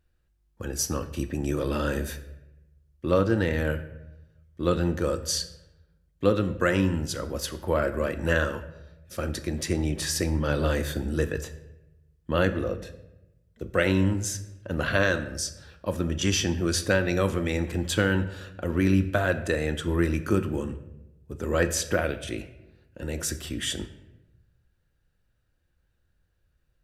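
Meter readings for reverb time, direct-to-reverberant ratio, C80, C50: 0.95 s, 8.0 dB, 15.0 dB, 13.0 dB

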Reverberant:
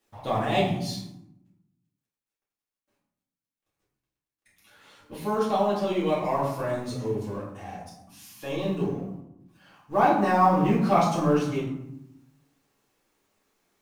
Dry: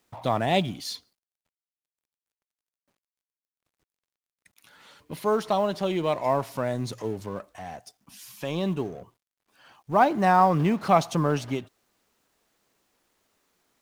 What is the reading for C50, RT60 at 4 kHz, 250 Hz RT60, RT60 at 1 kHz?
3.5 dB, 0.45 s, 1.3 s, 0.85 s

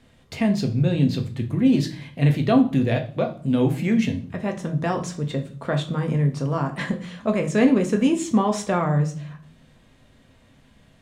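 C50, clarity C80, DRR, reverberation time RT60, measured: 12.5 dB, 18.0 dB, 3.0 dB, 0.45 s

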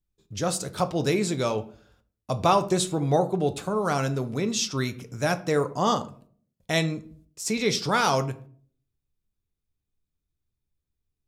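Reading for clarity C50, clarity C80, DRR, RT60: 17.0 dB, 21.0 dB, 9.0 dB, 0.50 s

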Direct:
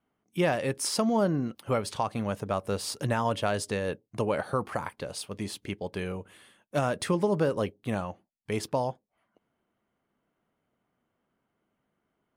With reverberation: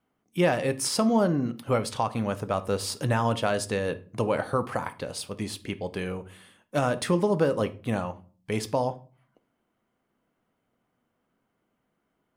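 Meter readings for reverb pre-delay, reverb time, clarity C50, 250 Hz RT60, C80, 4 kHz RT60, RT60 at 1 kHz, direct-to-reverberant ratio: 4 ms, 0.40 s, 17.0 dB, 0.60 s, 22.5 dB, 0.25 s, 0.35 s, 11.0 dB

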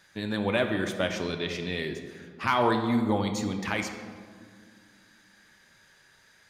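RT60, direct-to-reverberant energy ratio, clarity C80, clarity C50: 2.0 s, 5.0 dB, 8.5 dB, 7.0 dB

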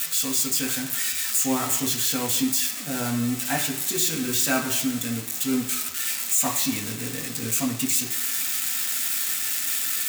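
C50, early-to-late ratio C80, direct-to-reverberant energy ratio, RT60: 9.0 dB, 11.0 dB, -0.5 dB, 1.0 s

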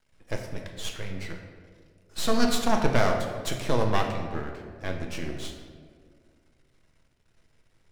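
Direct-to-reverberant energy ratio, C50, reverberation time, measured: 2.0 dB, 5.0 dB, 2.0 s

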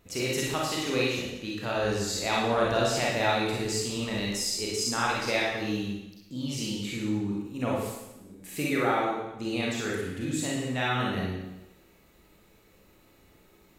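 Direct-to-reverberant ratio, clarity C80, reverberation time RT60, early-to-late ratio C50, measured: -4.5 dB, 3.0 dB, 0.95 s, -0.5 dB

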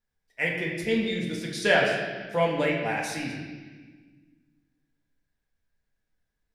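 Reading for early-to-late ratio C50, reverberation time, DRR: 2.5 dB, 1.4 s, -2.5 dB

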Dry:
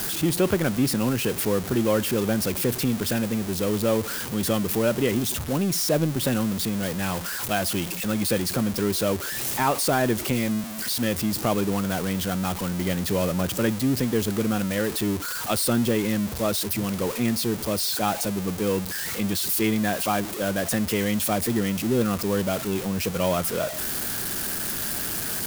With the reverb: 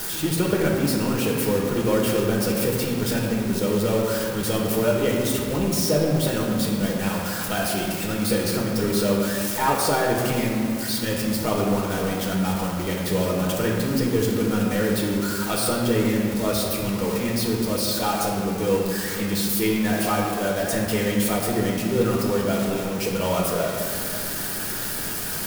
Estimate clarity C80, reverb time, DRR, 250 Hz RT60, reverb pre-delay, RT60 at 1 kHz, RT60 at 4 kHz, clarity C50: 2.5 dB, 2.4 s, -2.5 dB, 2.8 s, 5 ms, 2.3 s, 1.3 s, 1.5 dB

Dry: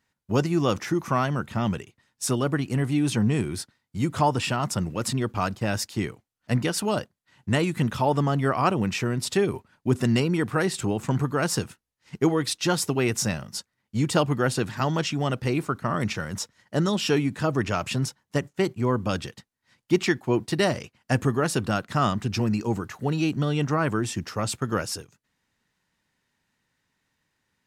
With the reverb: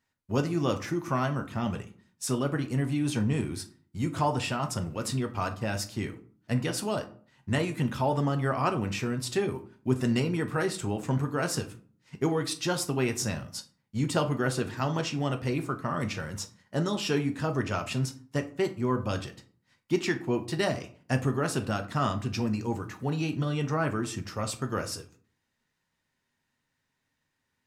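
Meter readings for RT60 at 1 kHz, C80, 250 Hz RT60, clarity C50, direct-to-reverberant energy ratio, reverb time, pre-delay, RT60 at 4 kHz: 0.45 s, 19.0 dB, 0.60 s, 14.0 dB, 5.5 dB, 0.45 s, 8 ms, 0.25 s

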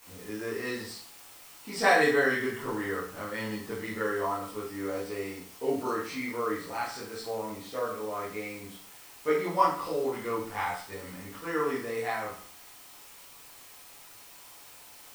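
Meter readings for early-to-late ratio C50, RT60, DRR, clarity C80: 4.5 dB, 0.50 s, -8.5 dB, 8.5 dB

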